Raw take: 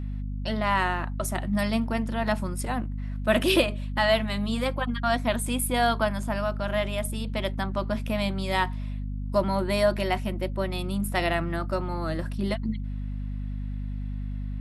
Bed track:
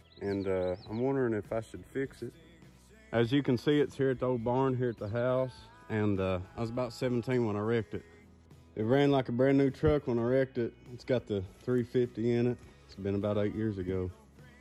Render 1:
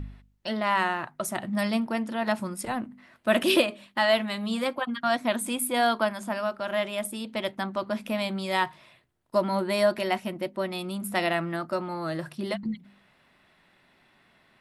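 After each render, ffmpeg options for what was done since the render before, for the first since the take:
-af "bandreject=f=50:t=h:w=4,bandreject=f=100:t=h:w=4,bandreject=f=150:t=h:w=4,bandreject=f=200:t=h:w=4,bandreject=f=250:t=h:w=4"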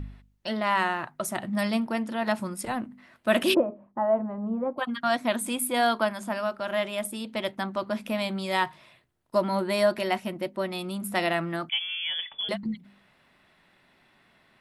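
-filter_complex "[0:a]asplit=3[s0][s1][s2];[s0]afade=t=out:st=3.53:d=0.02[s3];[s1]lowpass=f=1000:w=0.5412,lowpass=f=1000:w=1.3066,afade=t=in:st=3.53:d=0.02,afade=t=out:st=4.77:d=0.02[s4];[s2]afade=t=in:st=4.77:d=0.02[s5];[s3][s4][s5]amix=inputs=3:normalize=0,asettb=1/sr,asplit=3[s6][s7][s8];[s6]atrim=end=11.694[s9];[s7]atrim=start=11.69:end=12.49,asetpts=PTS-STARTPTS,afade=t=in:d=0.004:c=qsin,afade=t=out:st=0.796:d=0.004:c=qsin,lowpass=f=3100:t=q:w=0.5098,lowpass=f=3100:t=q:w=0.6013,lowpass=f=3100:t=q:w=0.9,lowpass=f=3100:t=q:w=2.563,afreqshift=-3600[s10];[s8]atrim=start=12.486[s11];[s9][s10]acrossfade=d=0.004:c1=hsin:c2=qsin[s12];[s12][s11]acrossfade=d=0.004:c1=qsin:c2=hsin"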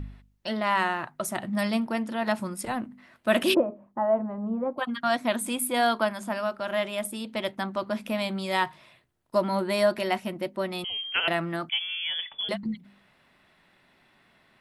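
-filter_complex "[0:a]asettb=1/sr,asplit=3[s0][s1][s2];[s0]atrim=end=10.844[s3];[s1]atrim=start=10.84:end=11.28,asetpts=PTS-STARTPTS,afade=t=in:d=0.004:c=qsin,afade=t=out:st=0.436:d=0.004:c=qsin,lowpass=f=2900:t=q:w=0.5098,lowpass=f=2900:t=q:w=0.6013,lowpass=f=2900:t=q:w=0.9,lowpass=f=2900:t=q:w=2.563,afreqshift=-3400[s4];[s2]atrim=start=11.276[s5];[s3][s4]acrossfade=d=0.004:c1=hsin:c2=qsin[s6];[s6][s5]acrossfade=d=0.004:c1=qsin:c2=hsin"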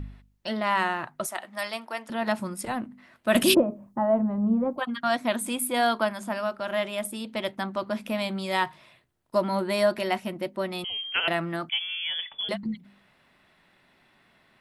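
-filter_complex "[0:a]asettb=1/sr,asplit=3[s0][s1][s2];[s0]atrim=end=1.264[s3];[s1]atrim=start=1.26:end=2.1,asetpts=PTS-STARTPTS,afade=t=in:d=0.004:c=qsin,afade=t=out:st=0.836:d=0.004:c=qsin,highpass=640[s4];[s2]atrim=start=2.096[s5];[s3][s4]acrossfade=d=0.004:c1=hsin:c2=qsin[s6];[s6][s5]acrossfade=d=0.004:c1=qsin:c2=hsin,asettb=1/sr,asplit=3[s7][s8][s9];[s7]atrim=end=3.354[s10];[s8]atrim=start=3.35:end=4.77,asetpts=PTS-STARTPTS,afade=t=in:d=0.004:c=qsin,afade=t=out:st=1.416:d=0.004:c=qsin,bass=f=250:g=11,treble=f=4000:g=11[s11];[s9]atrim=start=4.766[s12];[s10][s11]acrossfade=d=0.004:c1=hsin:c2=qsin[s13];[s13][s12]acrossfade=d=0.004:c1=qsin:c2=hsin"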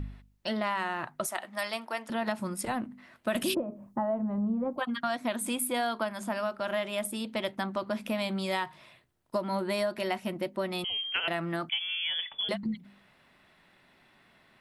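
-af "acompressor=threshold=0.0447:ratio=6"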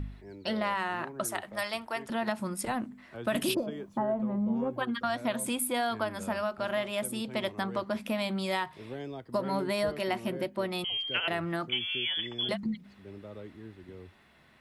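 -filter_complex "[1:a]volume=0.2[s0];[0:a][s0]amix=inputs=2:normalize=0"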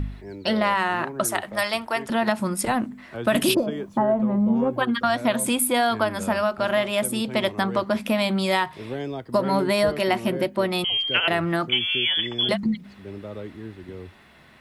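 -af "volume=2.82"

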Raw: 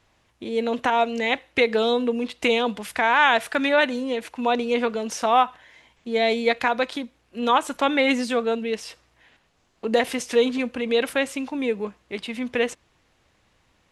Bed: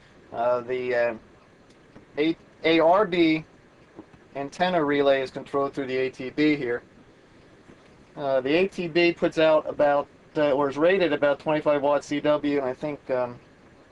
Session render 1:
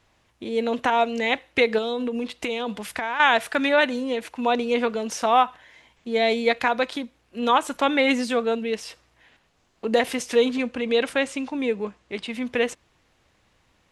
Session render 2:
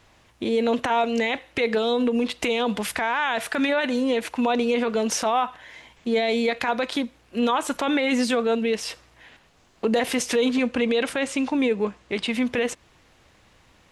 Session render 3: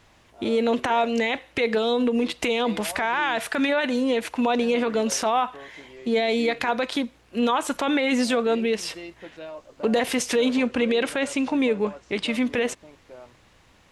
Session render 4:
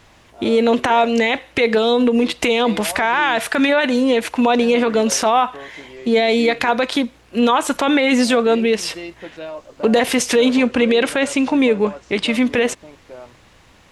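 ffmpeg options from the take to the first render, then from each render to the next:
-filter_complex "[0:a]asettb=1/sr,asplit=3[s0][s1][s2];[s0]atrim=end=1.784[s3];[s1]atrim=start=1.78:end=3.2,asetpts=PTS-STARTPTS,afade=t=in:d=0.004:c=qsin,afade=t=out:st=1.416:d=0.004:c=qsin,acompressor=threshold=0.0708:ratio=6:attack=3.2:release=140:knee=1:detection=peak[s4];[s2]atrim=start=3.196[s5];[s3][s4]acrossfade=d=0.004:c1=hsin:c2=qsin[s6];[s6][s5]acrossfade=d=0.004:c1=qsin:c2=hsin,asettb=1/sr,asplit=3[s7][s8][s9];[s7]atrim=end=10.574[s10];[s8]atrim=start=10.57:end=12.3,asetpts=PTS-STARTPTS,afade=t=in:d=0.004:c=qsin,afade=t=out:st=1.726:d=0.004:c=qsin,lowpass=f=9600:w=0.5412,lowpass=f=9600:w=1.3066[s11];[s9]atrim=start=12.296[s12];[s10][s11]acrossfade=d=0.004:c1=hsin:c2=qsin[s13];[s13][s12]acrossfade=d=0.004:c1=qsin:c2=hsin"
-filter_complex "[0:a]asplit=2[s0][s1];[s1]acompressor=threshold=0.0398:ratio=6,volume=1.26[s2];[s0][s2]amix=inputs=2:normalize=0,alimiter=limit=0.211:level=0:latency=1:release=12"
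-filter_complex "[1:a]volume=0.112[s0];[0:a][s0]amix=inputs=2:normalize=0"
-af "volume=2.24"

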